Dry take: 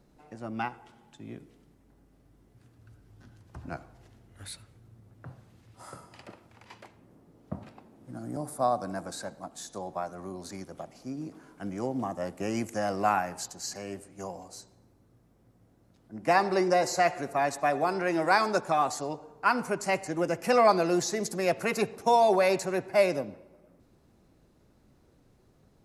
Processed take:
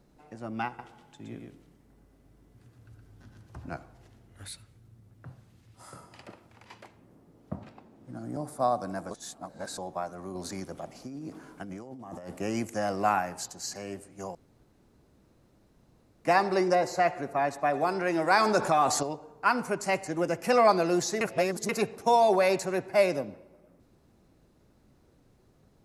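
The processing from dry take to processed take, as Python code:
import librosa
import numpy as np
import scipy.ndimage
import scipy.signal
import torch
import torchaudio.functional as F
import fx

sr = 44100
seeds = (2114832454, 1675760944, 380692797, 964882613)

y = fx.echo_single(x, sr, ms=118, db=-4.0, at=(0.67, 3.64))
y = fx.peak_eq(y, sr, hz=690.0, db=-4.5, octaves=2.9, at=(4.48, 5.95))
y = fx.peak_eq(y, sr, hz=11000.0, db=-6.5, octaves=0.83, at=(7.55, 8.6))
y = fx.over_compress(y, sr, threshold_db=-40.0, ratio=-1.0, at=(10.35, 12.39))
y = fx.peak_eq(y, sr, hz=8400.0, db=-8.5, octaves=2.3, at=(16.75, 17.74))
y = fx.env_flatten(y, sr, amount_pct=50, at=(18.33, 19.03))
y = fx.edit(y, sr, fx.reverse_span(start_s=9.11, length_s=0.67),
    fx.room_tone_fill(start_s=14.35, length_s=1.9),
    fx.reverse_span(start_s=21.21, length_s=0.48), tone=tone)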